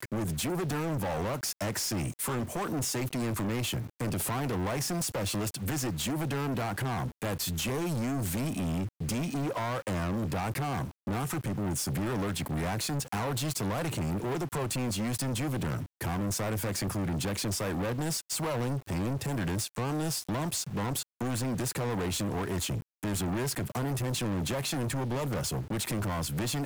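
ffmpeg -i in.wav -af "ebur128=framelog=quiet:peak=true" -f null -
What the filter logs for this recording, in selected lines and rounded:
Integrated loudness:
  I:         -31.9 LUFS
  Threshold: -41.9 LUFS
Loudness range:
  LRA:         0.6 LU
  Threshold: -52.0 LUFS
  LRA low:   -32.3 LUFS
  LRA high:  -31.6 LUFS
True peak:
  Peak:      -24.9 dBFS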